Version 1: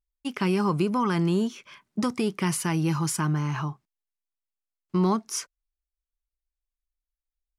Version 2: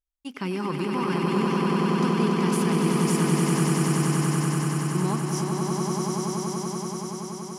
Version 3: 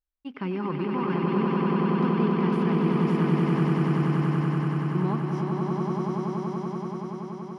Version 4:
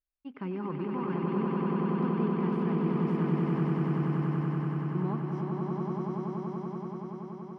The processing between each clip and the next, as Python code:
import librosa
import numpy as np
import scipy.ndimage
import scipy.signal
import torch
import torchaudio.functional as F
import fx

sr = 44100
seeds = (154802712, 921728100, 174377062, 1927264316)

y1 = fx.echo_swell(x, sr, ms=95, loudest=8, wet_db=-3.5)
y1 = F.gain(torch.from_numpy(y1), -5.0).numpy()
y2 = fx.air_absorb(y1, sr, metres=390.0)
y3 = fx.high_shelf(y2, sr, hz=2700.0, db=-11.0)
y3 = F.gain(torch.from_numpy(y3), -5.0).numpy()